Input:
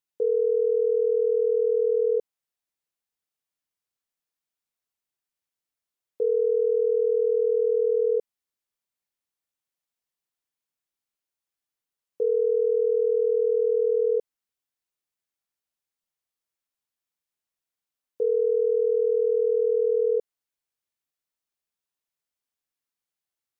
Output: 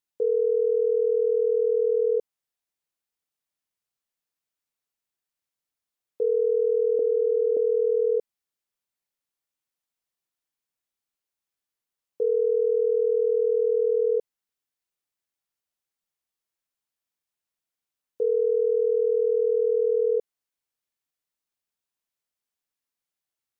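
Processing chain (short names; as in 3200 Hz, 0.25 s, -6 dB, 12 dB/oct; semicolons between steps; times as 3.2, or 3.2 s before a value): 6.99–7.57 HPF 290 Hz 24 dB/oct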